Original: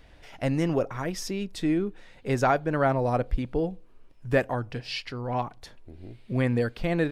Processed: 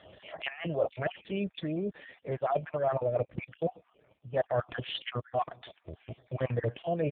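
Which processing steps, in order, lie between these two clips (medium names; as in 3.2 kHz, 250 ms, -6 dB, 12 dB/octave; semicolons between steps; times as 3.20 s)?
random holes in the spectrogram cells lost 40%; graphic EQ with 31 bands 250 Hz -11 dB, 630 Hz +9 dB, 1.6 kHz +5 dB, 3.15 kHz +5 dB; reverse; compression 16:1, threshold -32 dBFS, peak gain reduction 18.5 dB; reverse; comb 1.7 ms, depth 39%; trim +6 dB; AMR-NB 5.15 kbps 8 kHz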